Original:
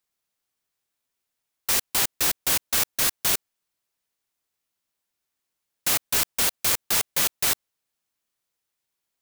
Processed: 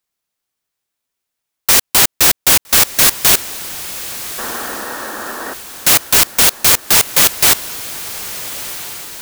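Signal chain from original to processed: sample leveller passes 2; painted sound noise, 4.38–5.54, 200–1900 Hz -34 dBFS; diffused feedback echo 1.306 s, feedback 52%, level -14 dB; gain +7 dB

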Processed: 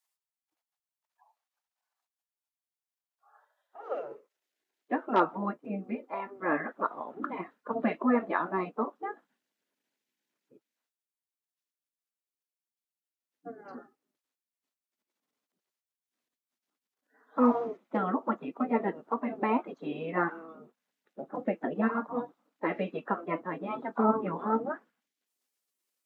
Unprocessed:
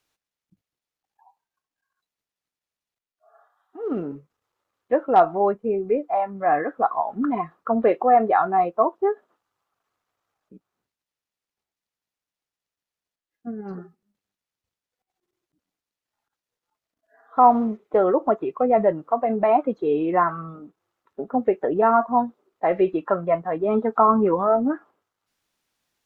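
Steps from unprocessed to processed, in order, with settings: spectral gate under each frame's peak -10 dB weak; high-pass sweep 790 Hz -> 240 Hz, 3.27–5.35; gain -2 dB

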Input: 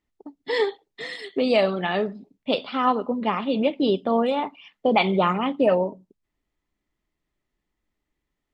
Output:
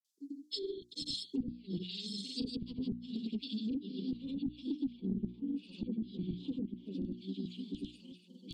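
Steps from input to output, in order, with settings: low shelf 91 Hz +10 dB; swung echo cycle 1.281 s, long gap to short 3:1, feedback 34%, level -4.5 dB; LFO high-pass saw down 2.7 Hz 320–3200 Hz; small resonant body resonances 310/510/850/3300 Hz, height 7 dB, ringing for 30 ms; treble ducked by the level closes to 590 Hz, closed at -11 dBFS; grains, pitch spread up and down by 0 st; inverse Chebyshev band-stop 560–1900 Hz, stop band 60 dB; low shelf 260 Hz +6 dB; notches 60/120/180/240/300/360 Hz; compressor 5:1, threshold -46 dBFS, peak gain reduction 21.5 dB; gain +10.5 dB

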